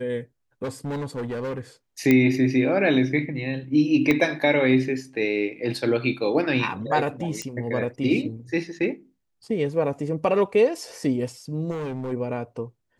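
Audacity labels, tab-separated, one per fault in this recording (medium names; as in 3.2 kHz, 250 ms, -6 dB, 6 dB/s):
0.630000	1.600000	clipped -26 dBFS
2.110000	2.110000	pop -7 dBFS
4.110000	4.110000	pop -9 dBFS
7.420000	7.420000	pop -16 dBFS
11.700000	12.130000	clipped -27 dBFS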